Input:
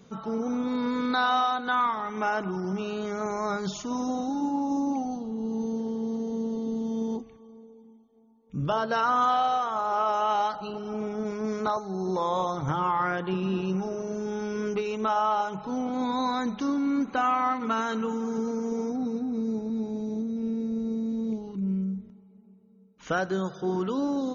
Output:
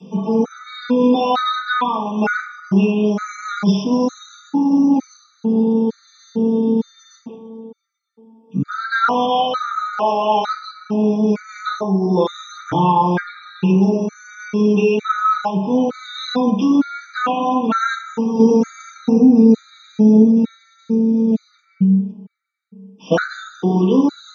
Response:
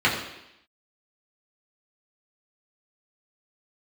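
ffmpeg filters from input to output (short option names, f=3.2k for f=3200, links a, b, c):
-filter_complex "[0:a]highpass=f=150:w=0.5412,highpass=f=150:w=1.3066,lowshelf=f=270:g=5.5,asettb=1/sr,asplit=3[a][b][c];[a]atrim=end=18.394[d];[b]atrim=start=18.39:end=20.54,asetpts=PTS-STARTPTS,afade=t=in:d=0.004:c=qsin,afade=t=out:st=2.146:d=0.004:c=qsin,acontrast=39[e];[c]atrim=start=20.536[f];[d][e]acrossfade=d=0.004:c1=hsin:c2=qsin[g];[g][f]acrossfade=d=0.004:c1=qsin:c2=hsin[h];[1:a]atrim=start_sample=2205,asetrate=79380,aresample=44100[i];[h][i]afir=irnorm=-1:irlink=0,afftfilt=real='re*gt(sin(2*PI*1.1*pts/sr)*(1-2*mod(floor(b*sr/1024/1200),2)),0)':imag='im*gt(sin(2*PI*1.1*pts/sr)*(1-2*mod(floor(b*sr/1024/1200),2)),0)':win_size=1024:overlap=0.75,volume=-1dB"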